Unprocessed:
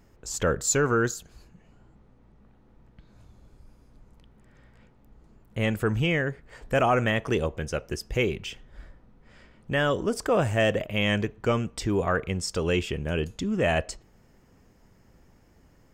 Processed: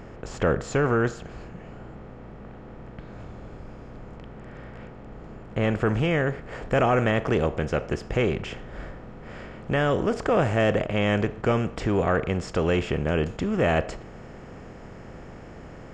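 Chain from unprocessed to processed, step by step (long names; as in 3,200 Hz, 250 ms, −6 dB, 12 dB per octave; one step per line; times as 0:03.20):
compressor on every frequency bin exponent 0.6
head-to-tape spacing loss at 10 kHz 26 dB, from 0:05.81 at 10 kHz 21 dB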